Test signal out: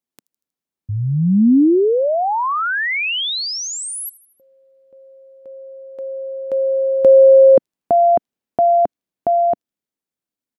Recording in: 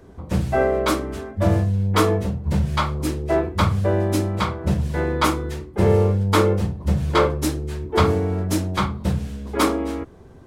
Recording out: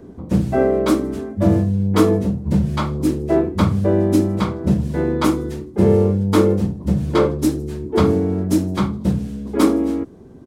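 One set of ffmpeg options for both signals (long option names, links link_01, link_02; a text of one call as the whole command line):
ffmpeg -i in.wav -filter_complex "[0:a]equalizer=frequency=250:width=0.66:gain=14,acrossover=split=4100[link_01][link_02];[link_01]dynaudnorm=framelen=170:gausssize=21:maxgain=9dB[link_03];[link_02]aecho=1:1:79|158|237|316:0.1|0.055|0.0303|0.0166[link_04];[link_03][link_04]amix=inputs=2:normalize=0,volume=-1.5dB" out.wav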